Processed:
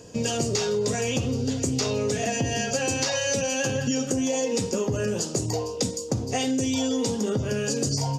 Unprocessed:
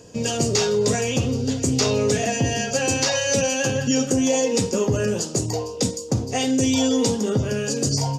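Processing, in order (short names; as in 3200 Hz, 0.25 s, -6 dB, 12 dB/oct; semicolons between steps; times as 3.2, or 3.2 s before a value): compressor, threshold -22 dBFS, peak gain reduction 6.5 dB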